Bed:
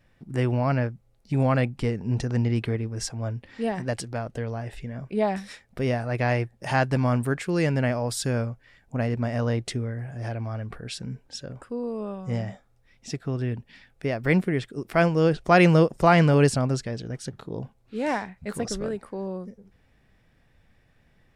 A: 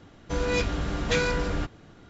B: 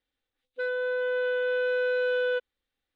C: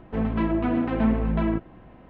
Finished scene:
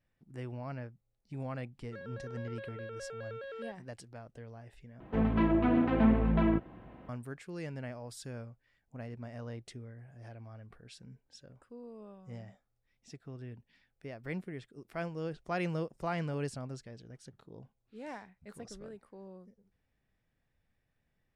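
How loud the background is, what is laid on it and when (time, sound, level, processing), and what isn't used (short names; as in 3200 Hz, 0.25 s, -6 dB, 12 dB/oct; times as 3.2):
bed -17.5 dB
1.33 add B -17.5 dB + shaped vibrato square 4.8 Hz, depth 160 cents
5 replace with C -3 dB + HPF 46 Hz
not used: A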